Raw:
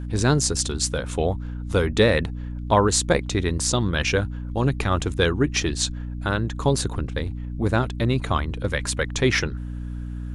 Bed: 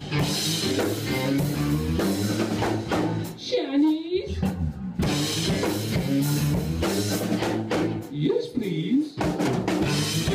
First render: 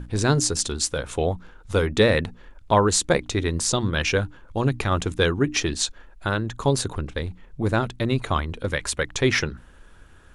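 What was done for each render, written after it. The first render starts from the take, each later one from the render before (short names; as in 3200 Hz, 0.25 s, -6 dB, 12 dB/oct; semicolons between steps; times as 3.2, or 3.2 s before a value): notches 60/120/180/240/300 Hz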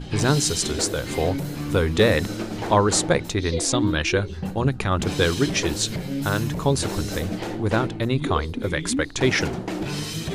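add bed -4.5 dB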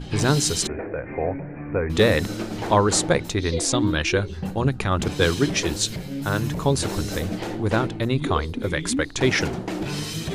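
0.67–1.9 rippled Chebyshev low-pass 2500 Hz, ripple 6 dB; 5.08–6.44 three-band expander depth 40%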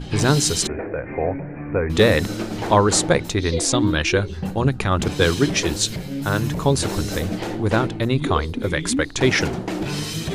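gain +2.5 dB; limiter -2 dBFS, peak gain reduction 1 dB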